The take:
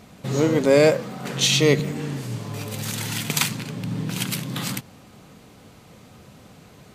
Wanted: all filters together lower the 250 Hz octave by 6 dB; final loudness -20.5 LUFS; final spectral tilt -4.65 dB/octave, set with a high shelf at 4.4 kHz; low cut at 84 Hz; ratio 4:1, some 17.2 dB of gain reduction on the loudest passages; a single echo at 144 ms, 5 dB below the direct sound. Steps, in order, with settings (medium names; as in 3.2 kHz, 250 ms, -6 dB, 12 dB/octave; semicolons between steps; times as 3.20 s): high-pass 84 Hz; peaking EQ 250 Hz -8.5 dB; treble shelf 4.4 kHz -6.5 dB; compression 4:1, threshold -35 dBFS; delay 144 ms -5 dB; trim +15.5 dB